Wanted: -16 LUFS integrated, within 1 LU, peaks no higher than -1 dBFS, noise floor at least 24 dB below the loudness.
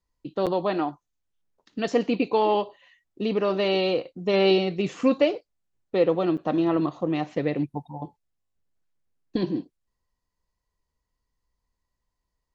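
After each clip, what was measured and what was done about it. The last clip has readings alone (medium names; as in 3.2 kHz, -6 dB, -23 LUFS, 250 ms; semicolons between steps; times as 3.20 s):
dropouts 2; longest dropout 7.2 ms; loudness -25.0 LUFS; peak level -8.5 dBFS; loudness target -16.0 LUFS
-> interpolate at 0.46/6.37 s, 7.2 ms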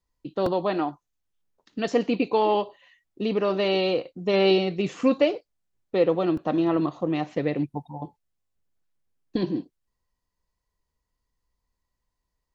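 dropouts 0; loudness -25.0 LUFS; peak level -8.5 dBFS; loudness target -16.0 LUFS
-> trim +9 dB; peak limiter -1 dBFS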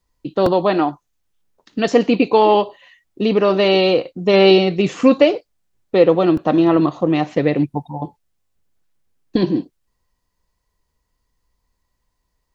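loudness -16.0 LUFS; peak level -1.0 dBFS; noise floor -72 dBFS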